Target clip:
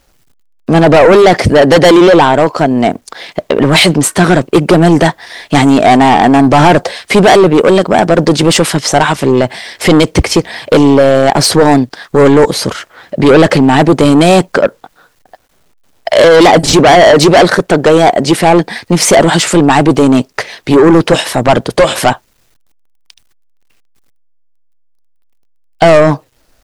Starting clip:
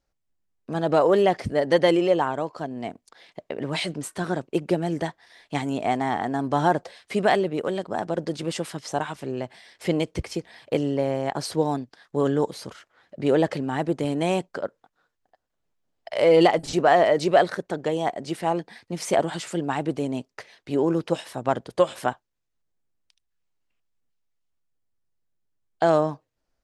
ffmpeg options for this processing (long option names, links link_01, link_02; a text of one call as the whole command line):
ffmpeg -i in.wav -af "apsyclip=19dB,acrusher=bits=9:mix=0:aa=0.000001,aeval=exprs='1.06*sin(PI/2*1.41*val(0)/1.06)':channel_layout=same,volume=-2dB" out.wav